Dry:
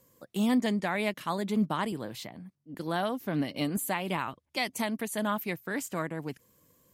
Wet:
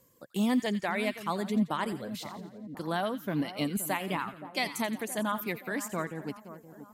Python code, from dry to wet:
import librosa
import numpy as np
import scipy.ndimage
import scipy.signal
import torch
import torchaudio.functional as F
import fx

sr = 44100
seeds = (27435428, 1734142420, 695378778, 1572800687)

y = fx.dereverb_blind(x, sr, rt60_s=0.83)
y = fx.echo_split(y, sr, split_hz=1300.0, low_ms=522, high_ms=86, feedback_pct=52, wet_db=-13.0)